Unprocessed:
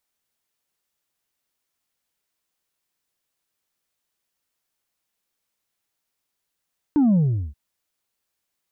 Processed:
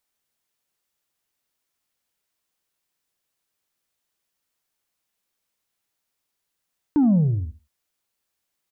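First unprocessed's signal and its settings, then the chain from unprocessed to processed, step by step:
bass drop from 310 Hz, over 0.58 s, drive 2.5 dB, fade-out 0.39 s, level −14.5 dB
repeating echo 73 ms, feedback 18%, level −15.5 dB

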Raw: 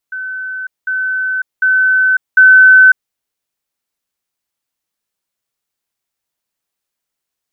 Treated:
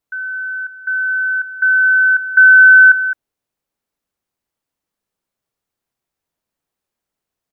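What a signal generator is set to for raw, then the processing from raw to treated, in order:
level staircase 1,520 Hz −20 dBFS, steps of 6 dB, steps 4, 0.55 s 0.20 s
tilt shelving filter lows +5.5 dB, about 1,300 Hz
on a send: single-tap delay 212 ms −11.5 dB

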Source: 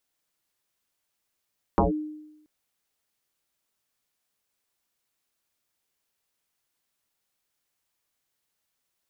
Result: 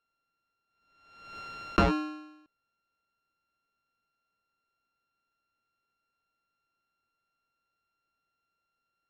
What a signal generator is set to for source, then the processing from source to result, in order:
two-operator FM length 0.68 s, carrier 305 Hz, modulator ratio 0.42, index 6.7, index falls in 0.14 s linear, decay 0.94 s, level −15 dB
samples sorted by size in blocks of 32 samples
high-frequency loss of the air 190 metres
background raised ahead of every attack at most 56 dB per second

